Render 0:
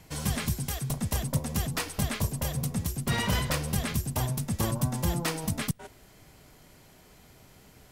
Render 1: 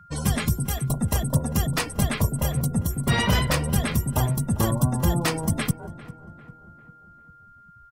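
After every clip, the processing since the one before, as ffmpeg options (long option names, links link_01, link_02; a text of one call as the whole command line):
ffmpeg -i in.wav -filter_complex "[0:a]afftdn=noise_reduction=30:noise_floor=-40,aeval=exprs='val(0)+0.00178*sin(2*PI*1400*n/s)':channel_layout=same,asplit=2[link_01][link_02];[link_02]adelay=398,lowpass=frequency=1800:poles=1,volume=-16dB,asplit=2[link_03][link_04];[link_04]adelay=398,lowpass=frequency=1800:poles=1,volume=0.52,asplit=2[link_05][link_06];[link_06]adelay=398,lowpass=frequency=1800:poles=1,volume=0.52,asplit=2[link_07][link_08];[link_08]adelay=398,lowpass=frequency=1800:poles=1,volume=0.52,asplit=2[link_09][link_10];[link_10]adelay=398,lowpass=frequency=1800:poles=1,volume=0.52[link_11];[link_01][link_03][link_05][link_07][link_09][link_11]amix=inputs=6:normalize=0,volume=6.5dB" out.wav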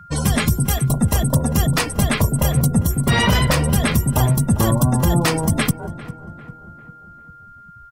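ffmpeg -i in.wav -af "alimiter=level_in=13.5dB:limit=-1dB:release=50:level=0:latency=1,volume=-5.5dB" out.wav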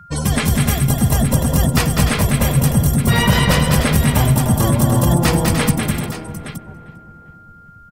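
ffmpeg -i in.wav -af "aecho=1:1:87|199|297|351|417|868:0.112|0.596|0.422|0.224|0.251|0.237" out.wav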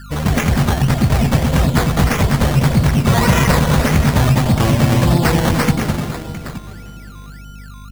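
ffmpeg -i in.wav -af "aeval=exprs='val(0)+0.0178*(sin(2*PI*50*n/s)+sin(2*PI*2*50*n/s)/2+sin(2*PI*3*50*n/s)/3+sin(2*PI*4*50*n/s)/4+sin(2*PI*5*50*n/s)/5)':channel_layout=same,acrusher=samples=14:mix=1:aa=0.000001:lfo=1:lforange=8.4:lforate=1.7,volume=1dB" out.wav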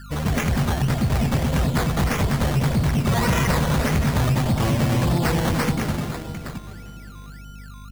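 ffmpeg -i in.wav -af "asoftclip=type=tanh:threshold=-9dB,volume=-4.5dB" out.wav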